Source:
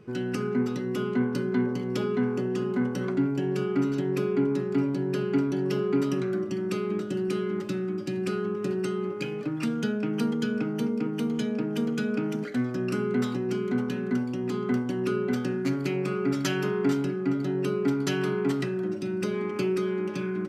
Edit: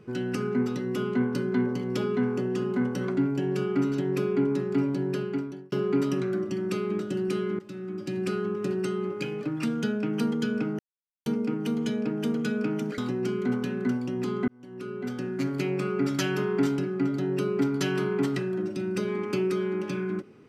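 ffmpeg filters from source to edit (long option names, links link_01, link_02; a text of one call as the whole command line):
ffmpeg -i in.wav -filter_complex "[0:a]asplit=6[link_01][link_02][link_03][link_04][link_05][link_06];[link_01]atrim=end=5.72,asetpts=PTS-STARTPTS,afade=type=out:start_time=5.06:duration=0.66[link_07];[link_02]atrim=start=5.72:end=7.59,asetpts=PTS-STARTPTS,afade=type=in:duration=0.004:curve=hsin,afade=type=out:start_time=1.866:duration=0.004:curve=hsin:silence=0.149624[link_08];[link_03]atrim=start=7.59:end=10.79,asetpts=PTS-STARTPTS,afade=type=in:duration=0.6:silence=0.149624,afade=type=out:start_time=3.196:duration=0.004:curve=hsin,apad=pad_dur=0.47[link_09];[link_04]atrim=start=10.79:end=12.512,asetpts=PTS-STARTPTS,afade=type=in:duration=0.004:curve=hsin[link_10];[link_05]atrim=start=13.238:end=14.74,asetpts=PTS-STARTPTS,afade=type=out:start_time=1.498:duration=0.004:curve=hsin[link_11];[link_06]atrim=start=14.74,asetpts=PTS-STARTPTS,afade=type=in:duration=1.15[link_12];[link_07][link_08][link_09][link_10]concat=n=4:v=0:a=1[link_13];[link_11][link_12]concat=n=2:v=0:a=1[link_14];[link_13][link_14]acrossfade=duration=0.004:curve1=hsin:curve2=hsin" out.wav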